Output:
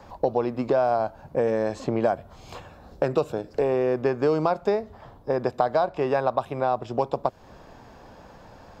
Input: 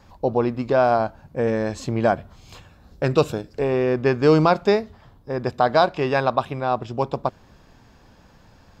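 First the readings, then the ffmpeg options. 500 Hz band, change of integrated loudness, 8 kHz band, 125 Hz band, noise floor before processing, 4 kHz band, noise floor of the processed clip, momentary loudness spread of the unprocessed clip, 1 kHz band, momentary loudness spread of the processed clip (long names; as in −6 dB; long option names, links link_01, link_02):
−3.0 dB, −4.0 dB, can't be measured, −8.0 dB, −53 dBFS, −10.0 dB, −49 dBFS, 11 LU, −4.0 dB, 8 LU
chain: -filter_complex "[0:a]equalizer=frequency=650:width=0.62:gain=10,acrossover=split=120|2400|6900[link_01][link_02][link_03][link_04];[link_01]acompressor=threshold=-45dB:ratio=4[link_05];[link_02]acompressor=threshold=-22dB:ratio=4[link_06];[link_03]acompressor=threshold=-49dB:ratio=4[link_07];[link_04]acompressor=threshold=-58dB:ratio=4[link_08];[link_05][link_06][link_07][link_08]amix=inputs=4:normalize=0"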